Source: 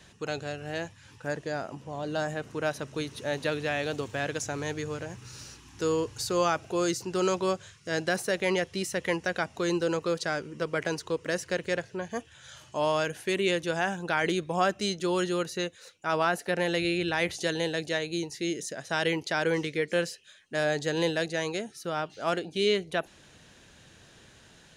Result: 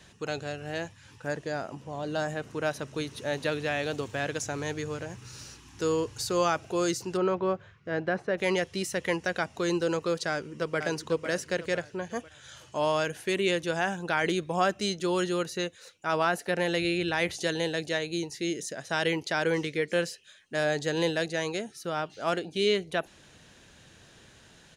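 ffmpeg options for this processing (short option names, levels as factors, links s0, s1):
-filter_complex "[0:a]asplit=3[s0][s1][s2];[s0]afade=t=out:st=7.16:d=0.02[s3];[s1]lowpass=1800,afade=t=in:st=7.16:d=0.02,afade=t=out:st=8.37:d=0.02[s4];[s2]afade=t=in:st=8.37:d=0.02[s5];[s3][s4][s5]amix=inputs=3:normalize=0,asplit=2[s6][s7];[s7]afade=t=in:st=10.3:d=0.01,afade=t=out:st=10.78:d=0.01,aecho=0:1:500|1000|1500|2000|2500:0.446684|0.178673|0.0714694|0.0285877|0.0114351[s8];[s6][s8]amix=inputs=2:normalize=0"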